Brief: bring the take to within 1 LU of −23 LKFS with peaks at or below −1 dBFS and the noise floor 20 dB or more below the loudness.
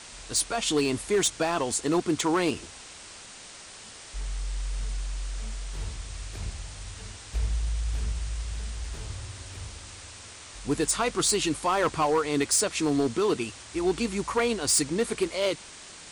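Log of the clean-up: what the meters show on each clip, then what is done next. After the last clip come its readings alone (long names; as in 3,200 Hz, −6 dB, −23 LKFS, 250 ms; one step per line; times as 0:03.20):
share of clipped samples 0.6%; peaks flattened at −18.0 dBFS; background noise floor −46 dBFS; target noise floor −48 dBFS; integrated loudness −27.5 LKFS; sample peak −18.0 dBFS; target loudness −23.0 LKFS
→ clipped peaks rebuilt −18 dBFS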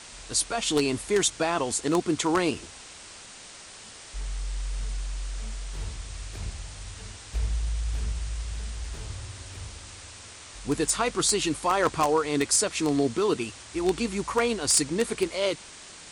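share of clipped samples 0.0%; background noise floor −46 dBFS; target noise floor −47 dBFS
→ noise reduction from a noise print 6 dB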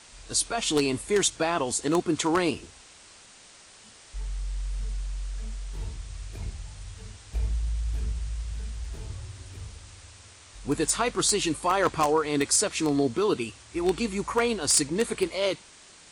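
background noise floor −52 dBFS; integrated loudness −27.0 LKFS; sample peak −9.0 dBFS; target loudness −23.0 LKFS
→ level +4 dB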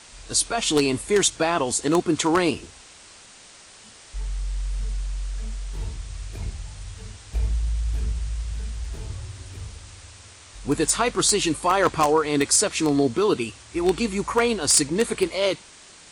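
integrated loudness −23.0 LKFS; sample peak −5.0 dBFS; background noise floor −48 dBFS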